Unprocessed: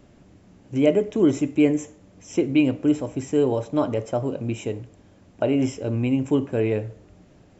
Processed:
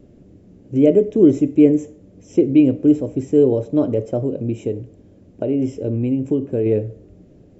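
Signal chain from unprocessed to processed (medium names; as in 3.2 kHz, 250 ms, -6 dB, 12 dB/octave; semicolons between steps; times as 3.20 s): 4.21–6.66 s: compression 3:1, threshold -23 dBFS, peak gain reduction 6 dB; resonant low shelf 660 Hz +11 dB, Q 1.5; trim -6.5 dB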